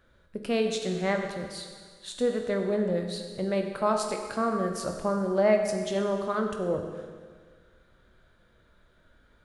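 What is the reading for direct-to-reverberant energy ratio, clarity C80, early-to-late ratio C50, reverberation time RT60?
3.5 dB, 6.5 dB, 5.5 dB, 1.7 s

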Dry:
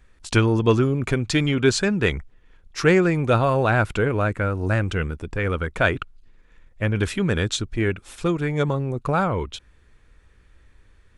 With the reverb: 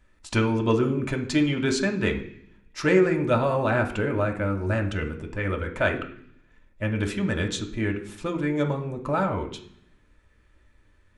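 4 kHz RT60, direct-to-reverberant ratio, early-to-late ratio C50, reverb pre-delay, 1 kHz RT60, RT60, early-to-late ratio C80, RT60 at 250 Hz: 0.80 s, 1.0 dB, 10.5 dB, 3 ms, 0.60 s, 0.60 s, 14.0 dB, 1.0 s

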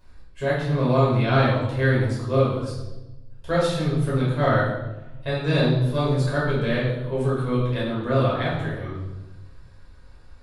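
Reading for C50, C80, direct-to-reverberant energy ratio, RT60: 1.0 dB, 5.0 dB, -8.0 dB, 1.0 s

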